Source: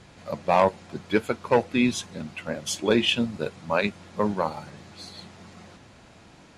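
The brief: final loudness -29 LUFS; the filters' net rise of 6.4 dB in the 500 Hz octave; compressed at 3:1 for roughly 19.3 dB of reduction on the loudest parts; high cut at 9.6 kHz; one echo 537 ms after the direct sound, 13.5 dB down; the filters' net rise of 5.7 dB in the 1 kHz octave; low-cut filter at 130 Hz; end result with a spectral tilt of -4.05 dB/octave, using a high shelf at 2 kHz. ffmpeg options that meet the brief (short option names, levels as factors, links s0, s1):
-af "highpass=130,lowpass=9600,equalizer=f=500:t=o:g=6.5,equalizer=f=1000:t=o:g=6.5,highshelf=f=2000:g=-8.5,acompressor=threshold=0.0158:ratio=3,aecho=1:1:537:0.211,volume=2.66"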